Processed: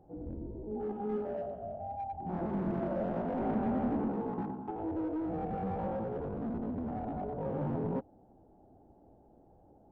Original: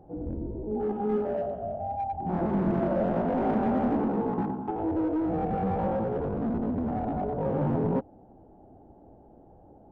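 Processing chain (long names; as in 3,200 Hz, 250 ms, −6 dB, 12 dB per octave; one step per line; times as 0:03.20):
0:03.39–0:04.13: bass and treble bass +4 dB, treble −5 dB
level −7.5 dB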